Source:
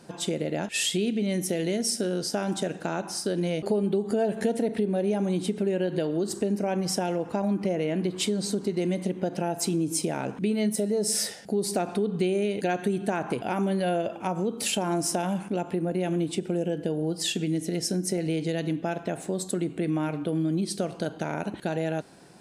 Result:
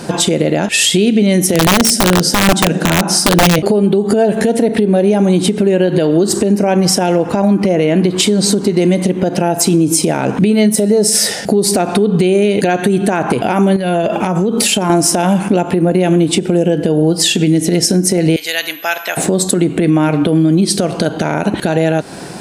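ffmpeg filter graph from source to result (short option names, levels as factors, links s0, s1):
-filter_complex "[0:a]asettb=1/sr,asplit=3[s0][s1][s2];[s0]atrim=end=1.544[s3];[s1]atrim=start=1.54:end=3.59,asetpts=PTS-STARTPTS,afade=t=in:d=0.004:c=qsin,afade=t=out:st=2.046:d=0.004:c=qsin,lowshelf=f=120:t=q:w=3:g=-11.5,bandreject=f=74.78:t=h:w=4,bandreject=f=149.56:t=h:w=4,bandreject=f=224.34:t=h:w=4,bandreject=f=299.12:t=h:w=4,bandreject=f=373.9:t=h:w=4,bandreject=f=448.68:t=h:w=4,bandreject=f=523.46:t=h:w=4,bandreject=f=598.24:t=h:w=4,bandreject=f=673.02:t=h:w=4,bandreject=f=747.8:t=h:w=4,bandreject=f=822.58:t=h:w=4,bandreject=f=897.36:t=h:w=4,bandreject=f=972.14:t=h:w=4,bandreject=f=1046.92:t=h:w=4,bandreject=f=1121.7:t=h:w=4,bandreject=f=1196.48:t=h:w=4,bandreject=f=1271.26:t=h:w=4,bandreject=f=1346.04:t=h:w=4,bandreject=f=1420.82:t=h:w=4,aeval=exprs='(mod(7.5*val(0)+1,2)-1)/7.5':c=same[s4];[s2]atrim=start=3.586[s5];[s3][s4]acrossfade=d=0.004:c1=hsin:c2=qsin[s6];[s6][s5]acrossfade=d=0.004:c1=qsin:c2=hsin,asettb=1/sr,asplit=3[s7][s8][s9];[s7]atrim=end=13.764[s10];[s8]atrim=start=13.76:end=14.9,asetpts=PTS-STARTPTS,afade=t=in:d=0.004:c=qsin,afade=t=out:st=1.136:d=0.004:c=qsin,aecho=1:1:4.8:0.37,atrim=end_sample=50274,acompressor=threshold=0.0224:ratio=6:attack=3.2:release=140:knee=1:detection=peak[s11];[s9]atrim=start=14.896[s12];[s10][s11]acrossfade=d=0.004:c1=hsin:c2=qsin[s13];[s13][s12]acrossfade=d=0.004:c1=qsin:c2=hsin,asettb=1/sr,asplit=3[s14][s15][s16];[s14]atrim=end=18.364[s17];[s15]atrim=start=18.36:end=19.17,asetpts=PTS-STARTPTS,afade=t=in:d=0.004:c=qsin,afade=t=out:st=0.806:d=0.004:c=qsin,highpass=1500,aeval=exprs='val(0)+0.00141*sin(2*PI*12000*n/s)':c=same[s18];[s16]atrim=start=19.166[s19];[s17][s18]acrossfade=d=0.004:c1=hsin:c2=qsin[s20];[s20][s19]acrossfade=d=0.004:c1=qsin:c2=hsin,acompressor=threshold=0.0251:ratio=6,alimiter=level_in=17.8:limit=0.891:release=50:level=0:latency=1,volume=0.891"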